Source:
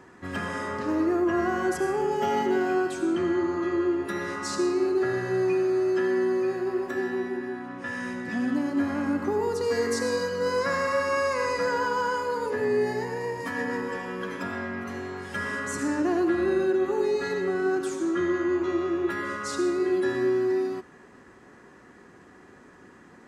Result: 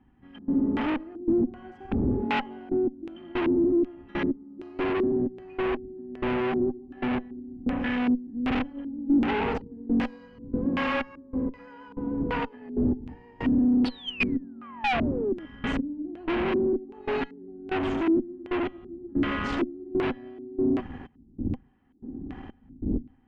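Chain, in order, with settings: wind noise 83 Hz -30 dBFS; painted sound fall, 13.85–15.46, 300–4600 Hz -23 dBFS; step gate "...xxx..x" 94 bpm -24 dB; small resonant body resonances 250/790/3100 Hz, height 18 dB, ringing for 50 ms; tube stage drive 27 dB, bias 0.7; LFO low-pass square 1.3 Hz 310–2700 Hz; gain +2 dB

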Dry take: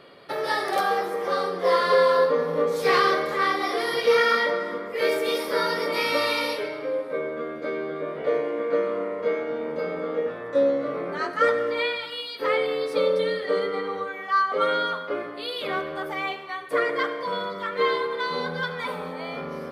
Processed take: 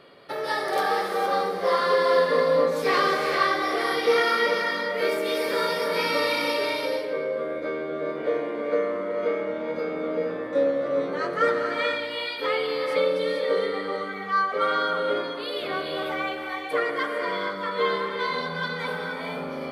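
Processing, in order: non-linear reverb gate 0.49 s rising, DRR 2 dB; gain -2 dB

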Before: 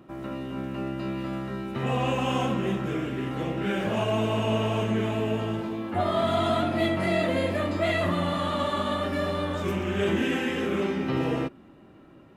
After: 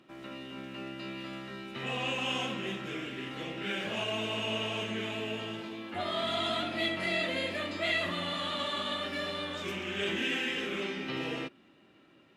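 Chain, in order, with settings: weighting filter D; gain -9 dB

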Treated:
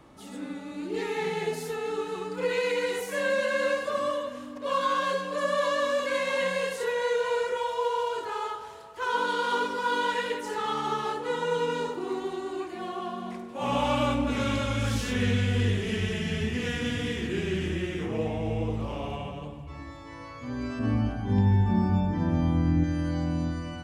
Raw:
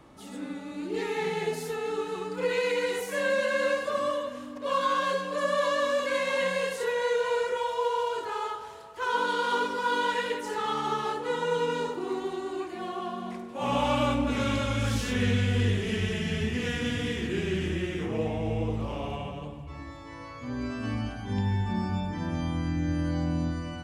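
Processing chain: 20.79–22.84 tilt shelf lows +6 dB, about 1400 Hz

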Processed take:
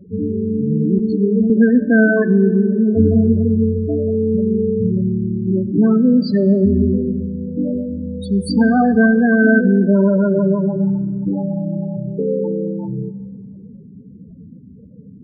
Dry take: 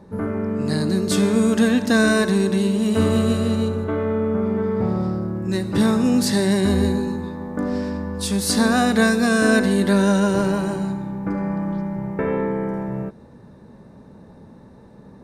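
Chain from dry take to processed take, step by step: 5.67–6.33 HPF 130 Hz 12 dB/oct; loudest bins only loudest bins 8; reverb RT60 1.9 s, pre-delay 3 ms, DRR 14.5 dB; 0.98–1.5 ensemble effect; gain +5.5 dB

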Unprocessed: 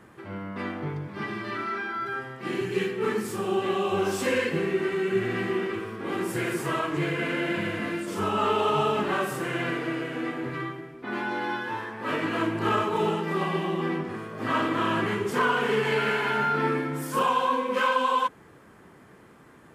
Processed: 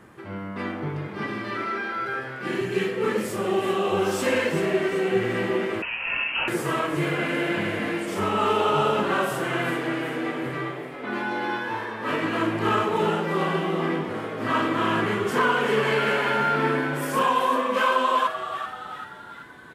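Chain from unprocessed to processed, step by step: frequency-shifting echo 0.385 s, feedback 52%, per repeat +120 Hz, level -10 dB; 5.82–6.48 inverted band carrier 3000 Hz; gain +2 dB

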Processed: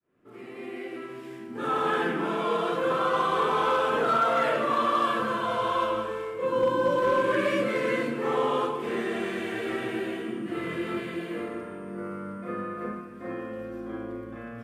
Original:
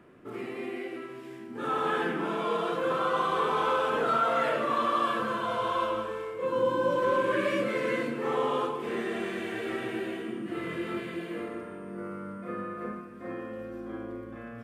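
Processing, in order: opening faded in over 1.13 s; overloaded stage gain 19 dB; gain +2.5 dB

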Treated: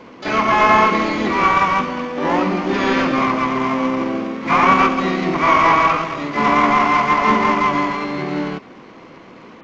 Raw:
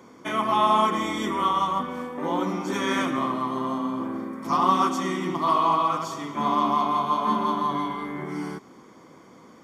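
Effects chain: CVSD 16 kbps; harmoniser +4 st -16 dB, +12 st -8 dB; gain +8.5 dB

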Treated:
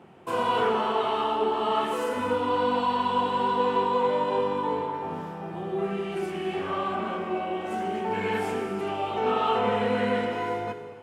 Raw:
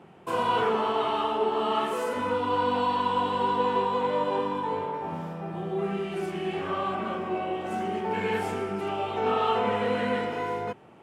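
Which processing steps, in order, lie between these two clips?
non-linear reverb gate 0.32 s flat, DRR 8 dB

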